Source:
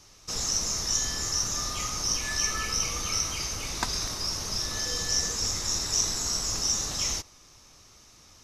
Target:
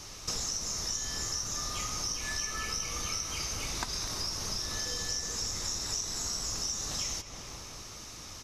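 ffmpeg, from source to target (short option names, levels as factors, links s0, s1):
-filter_complex "[0:a]asplit=2[s0][s1];[s1]adelay=211,lowpass=f=2600:p=1,volume=0.188,asplit=2[s2][s3];[s3]adelay=211,lowpass=f=2600:p=1,volume=0.51,asplit=2[s4][s5];[s5]adelay=211,lowpass=f=2600:p=1,volume=0.51,asplit=2[s6][s7];[s7]adelay=211,lowpass=f=2600:p=1,volume=0.51,asplit=2[s8][s9];[s9]adelay=211,lowpass=f=2600:p=1,volume=0.51[s10];[s0][s2][s4][s6][s8][s10]amix=inputs=6:normalize=0,acompressor=threshold=0.00794:ratio=6,volume=2.82"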